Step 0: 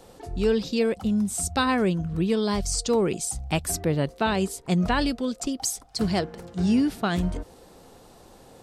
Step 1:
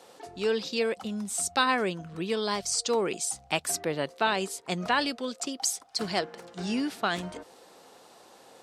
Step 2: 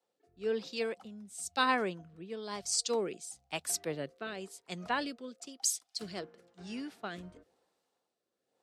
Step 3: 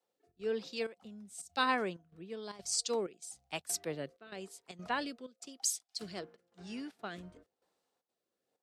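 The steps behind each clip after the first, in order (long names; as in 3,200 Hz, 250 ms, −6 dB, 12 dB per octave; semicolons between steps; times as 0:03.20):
meter weighting curve A
rotating-speaker cabinet horn 1 Hz; multiband upward and downward expander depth 70%; level −7.5 dB
gate pattern "xxxx.xxxxxx..x" 191 BPM −12 dB; level −2 dB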